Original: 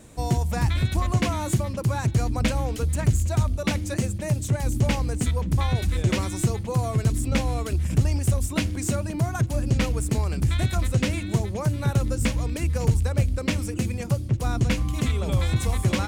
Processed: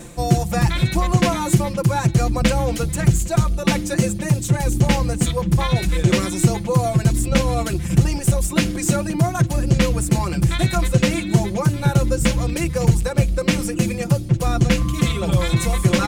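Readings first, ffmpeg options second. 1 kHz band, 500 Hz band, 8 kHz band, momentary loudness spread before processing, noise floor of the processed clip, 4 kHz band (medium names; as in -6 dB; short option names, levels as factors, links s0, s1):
+7.5 dB, +7.5 dB, +7.5 dB, 3 LU, -27 dBFS, +7.0 dB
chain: -af "aecho=1:1:5.8:0.97,areverse,acompressor=mode=upward:threshold=0.1:ratio=2.5,areverse,volume=1.58"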